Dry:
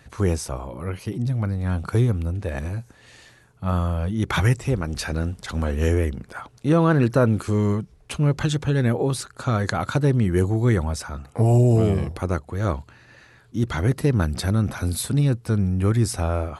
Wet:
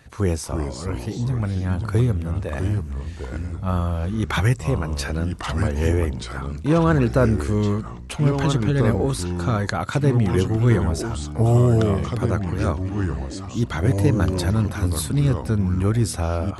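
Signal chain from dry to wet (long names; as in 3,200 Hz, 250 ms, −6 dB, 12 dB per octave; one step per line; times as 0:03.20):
delay with pitch and tempo change per echo 287 ms, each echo −3 semitones, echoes 3, each echo −6 dB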